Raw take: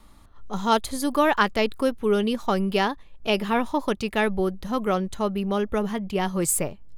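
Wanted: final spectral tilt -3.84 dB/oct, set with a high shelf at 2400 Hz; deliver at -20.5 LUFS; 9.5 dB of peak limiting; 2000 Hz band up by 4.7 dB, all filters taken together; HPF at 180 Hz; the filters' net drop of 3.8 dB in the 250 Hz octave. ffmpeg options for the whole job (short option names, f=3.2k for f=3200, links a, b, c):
-af "highpass=180,equalizer=f=250:t=o:g=-3,equalizer=f=2k:t=o:g=8,highshelf=f=2.4k:g=-4,volume=6.5dB,alimiter=limit=-6.5dB:level=0:latency=1"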